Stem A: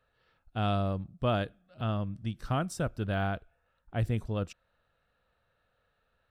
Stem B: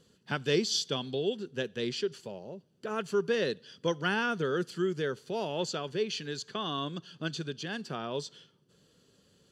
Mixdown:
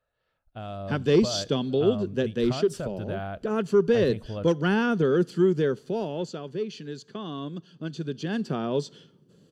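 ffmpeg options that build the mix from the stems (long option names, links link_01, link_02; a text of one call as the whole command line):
ffmpeg -i stem1.wav -i stem2.wav -filter_complex "[0:a]equalizer=frequency=610:width=3.9:gain=8,acompressor=threshold=-29dB:ratio=6,volume=-8dB[link_01];[1:a]equalizer=frequency=230:width_type=o:width=3:gain=12,acontrast=52,adelay=600,volume=-6dB,afade=type=out:start_time=5.65:duration=0.65:silence=0.421697,afade=type=in:start_time=7.91:duration=0.45:silence=0.398107[link_02];[link_01][link_02]amix=inputs=2:normalize=0,dynaudnorm=framelen=120:gausssize=13:maxgain=7.5dB" out.wav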